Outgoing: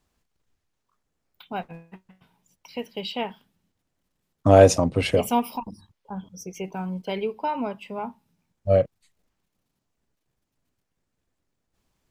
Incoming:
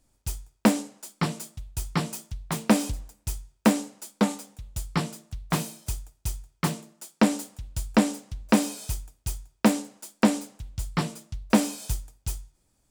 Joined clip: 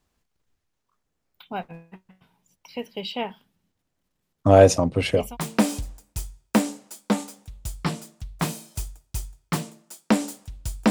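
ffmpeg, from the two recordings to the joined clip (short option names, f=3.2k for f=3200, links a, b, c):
-filter_complex "[0:a]apad=whole_dur=10.9,atrim=end=10.9,atrim=end=5.37,asetpts=PTS-STARTPTS[a];[1:a]atrim=start=2.26:end=8.01,asetpts=PTS-STARTPTS[b];[a][b]acrossfade=d=0.22:c1=tri:c2=tri"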